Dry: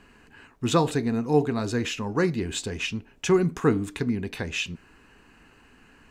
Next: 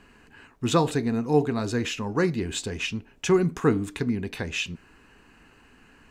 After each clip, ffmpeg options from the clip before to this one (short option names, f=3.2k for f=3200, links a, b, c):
-af anull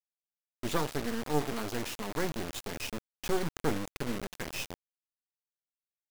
-af "aresample=16000,aeval=exprs='max(val(0),0)':c=same,aresample=44100,acrusher=bits=4:mix=0:aa=0.000001,volume=-5.5dB"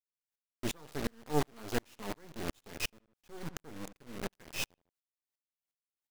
-filter_complex "[0:a]asplit=2[a][b];[b]adelay=75,lowpass=f=3.7k:p=1,volume=-21.5dB,asplit=2[c][d];[d]adelay=75,lowpass=f=3.7k:p=1,volume=0.34[e];[a][c][e]amix=inputs=3:normalize=0,aeval=exprs='val(0)*pow(10,-39*if(lt(mod(-2.8*n/s,1),2*abs(-2.8)/1000),1-mod(-2.8*n/s,1)/(2*abs(-2.8)/1000),(mod(-2.8*n/s,1)-2*abs(-2.8)/1000)/(1-2*abs(-2.8)/1000))/20)':c=same,volume=5.5dB"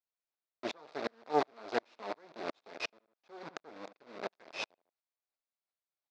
-af "aeval=exprs='0.188*(cos(1*acos(clip(val(0)/0.188,-1,1)))-cos(1*PI/2))+0.0075*(cos(7*acos(clip(val(0)/0.188,-1,1)))-cos(7*PI/2))':c=same,highpass=420,equalizer=f=650:t=q:w=4:g=5,equalizer=f=1.8k:t=q:w=4:g=-4,equalizer=f=3k:t=q:w=4:g=-9,lowpass=f=4.4k:w=0.5412,lowpass=f=4.4k:w=1.3066,volume=4dB"